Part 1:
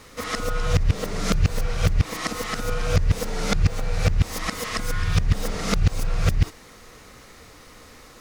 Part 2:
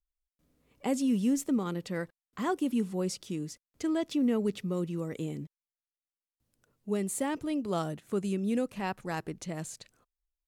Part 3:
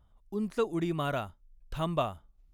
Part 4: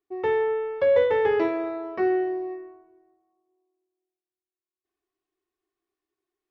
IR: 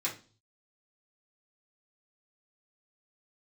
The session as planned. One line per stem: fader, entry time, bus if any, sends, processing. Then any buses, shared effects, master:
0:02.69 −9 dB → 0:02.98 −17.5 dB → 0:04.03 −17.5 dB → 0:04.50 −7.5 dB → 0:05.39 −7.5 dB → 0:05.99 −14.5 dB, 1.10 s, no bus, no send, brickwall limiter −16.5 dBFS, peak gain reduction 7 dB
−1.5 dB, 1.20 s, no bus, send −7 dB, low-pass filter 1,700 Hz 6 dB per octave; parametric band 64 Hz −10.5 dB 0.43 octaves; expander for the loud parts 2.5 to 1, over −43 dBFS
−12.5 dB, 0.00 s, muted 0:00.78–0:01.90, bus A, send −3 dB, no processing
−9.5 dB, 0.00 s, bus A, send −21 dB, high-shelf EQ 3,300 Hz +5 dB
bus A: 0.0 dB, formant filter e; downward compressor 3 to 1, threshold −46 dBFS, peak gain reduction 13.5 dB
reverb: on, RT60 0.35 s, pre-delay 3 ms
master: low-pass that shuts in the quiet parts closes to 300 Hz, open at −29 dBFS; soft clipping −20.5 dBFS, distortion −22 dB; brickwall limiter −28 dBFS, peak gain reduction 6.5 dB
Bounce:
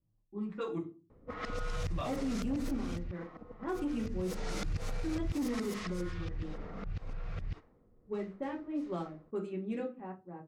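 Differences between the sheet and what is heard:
stem 4: muted
reverb return +8.0 dB

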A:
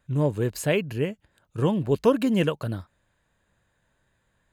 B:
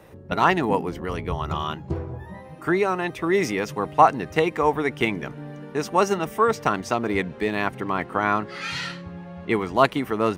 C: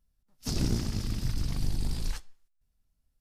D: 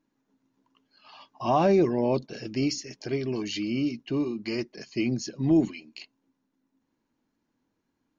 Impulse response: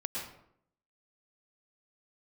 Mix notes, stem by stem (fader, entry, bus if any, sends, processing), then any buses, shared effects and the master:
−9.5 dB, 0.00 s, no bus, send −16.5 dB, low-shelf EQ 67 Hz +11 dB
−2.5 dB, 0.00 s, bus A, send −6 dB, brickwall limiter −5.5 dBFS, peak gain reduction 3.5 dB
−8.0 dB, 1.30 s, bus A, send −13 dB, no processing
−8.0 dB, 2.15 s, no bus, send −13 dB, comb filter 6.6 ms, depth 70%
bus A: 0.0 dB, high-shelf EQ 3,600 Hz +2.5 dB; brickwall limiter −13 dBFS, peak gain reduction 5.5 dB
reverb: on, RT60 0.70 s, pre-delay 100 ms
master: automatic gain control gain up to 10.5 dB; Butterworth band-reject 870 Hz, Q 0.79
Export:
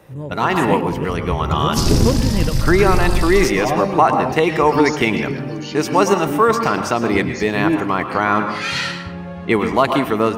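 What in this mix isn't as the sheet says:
stem C −8.0 dB → +3.5 dB
master: missing Butterworth band-reject 870 Hz, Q 0.79

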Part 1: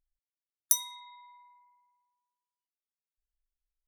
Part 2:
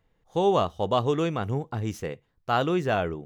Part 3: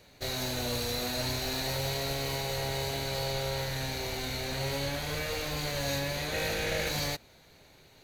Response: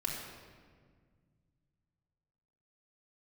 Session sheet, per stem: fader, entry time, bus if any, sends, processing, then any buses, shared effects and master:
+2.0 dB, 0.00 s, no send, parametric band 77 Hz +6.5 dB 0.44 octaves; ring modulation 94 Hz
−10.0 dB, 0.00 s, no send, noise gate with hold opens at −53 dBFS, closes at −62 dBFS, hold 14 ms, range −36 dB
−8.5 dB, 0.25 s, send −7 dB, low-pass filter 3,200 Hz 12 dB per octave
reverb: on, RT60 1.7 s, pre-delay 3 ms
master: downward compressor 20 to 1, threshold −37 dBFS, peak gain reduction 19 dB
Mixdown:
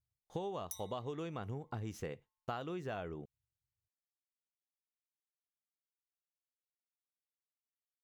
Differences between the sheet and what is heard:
stem 1 +2.0 dB → −4.5 dB
stem 2 −10.0 dB → −3.0 dB
stem 3: muted
reverb: off

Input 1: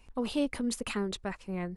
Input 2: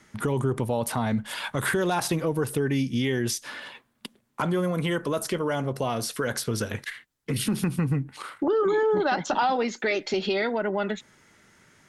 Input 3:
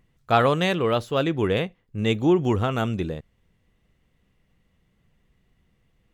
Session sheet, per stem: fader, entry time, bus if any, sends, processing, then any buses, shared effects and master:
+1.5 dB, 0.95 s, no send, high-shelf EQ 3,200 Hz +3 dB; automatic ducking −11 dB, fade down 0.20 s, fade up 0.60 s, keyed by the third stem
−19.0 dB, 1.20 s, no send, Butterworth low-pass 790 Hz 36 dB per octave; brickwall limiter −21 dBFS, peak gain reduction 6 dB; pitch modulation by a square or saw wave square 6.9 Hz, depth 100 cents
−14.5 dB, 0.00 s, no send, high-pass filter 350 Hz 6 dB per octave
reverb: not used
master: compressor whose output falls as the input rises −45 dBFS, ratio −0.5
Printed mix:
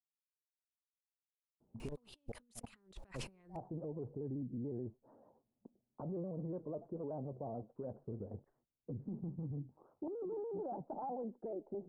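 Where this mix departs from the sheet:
stem 1: entry 0.95 s → 1.80 s
stem 2: entry 1.20 s → 1.60 s
stem 3: muted

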